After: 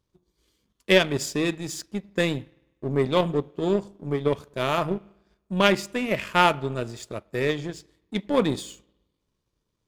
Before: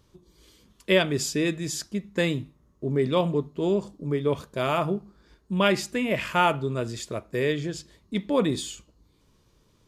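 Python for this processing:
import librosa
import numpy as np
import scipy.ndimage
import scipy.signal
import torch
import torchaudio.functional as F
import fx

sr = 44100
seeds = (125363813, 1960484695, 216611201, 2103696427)

y = fx.rev_spring(x, sr, rt60_s=1.3, pass_ms=(50,), chirp_ms=35, drr_db=19.0)
y = fx.power_curve(y, sr, exponent=1.4)
y = y * 10.0 ** (5.5 / 20.0)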